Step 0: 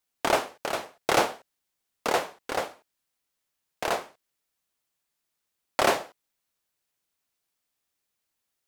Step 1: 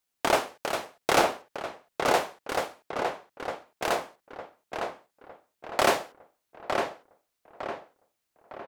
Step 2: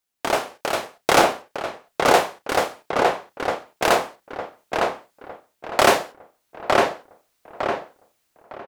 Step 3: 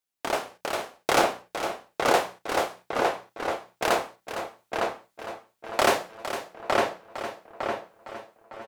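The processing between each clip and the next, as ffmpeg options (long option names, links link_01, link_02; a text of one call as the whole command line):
ffmpeg -i in.wav -filter_complex "[0:a]asplit=2[link_01][link_02];[link_02]adelay=907,lowpass=frequency=2700:poles=1,volume=-4.5dB,asplit=2[link_03][link_04];[link_04]adelay=907,lowpass=frequency=2700:poles=1,volume=0.45,asplit=2[link_05][link_06];[link_06]adelay=907,lowpass=frequency=2700:poles=1,volume=0.45,asplit=2[link_07][link_08];[link_08]adelay=907,lowpass=frequency=2700:poles=1,volume=0.45,asplit=2[link_09][link_10];[link_10]adelay=907,lowpass=frequency=2700:poles=1,volume=0.45,asplit=2[link_11][link_12];[link_12]adelay=907,lowpass=frequency=2700:poles=1,volume=0.45[link_13];[link_01][link_03][link_05][link_07][link_09][link_11][link_13]amix=inputs=7:normalize=0" out.wav
ffmpeg -i in.wav -filter_complex "[0:a]asplit=2[link_01][link_02];[link_02]adelay=33,volume=-13dB[link_03];[link_01][link_03]amix=inputs=2:normalize=0,dynaudnorm=framelen=140:gausssize=7:maxgain=11dB" out.wav
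ffmpeg -i in.wav -filter_complex "[0:a]bandreject=frequency=60:width_type=h:width=6,bandreject=frequency=120:width_type=h:width=6,bandreject=frequency=180:width_type=h:width=6,asplit=2[link_01][link_02];[link_02]aecho=0:1:458|916|1374|1832|2290|2748:0.282|0.149|0.0792|0.042|0.0222|0.0118[link_03];[link_01][link_03]amix=inputs=2:normalize=0,volume=-6dB" out.wav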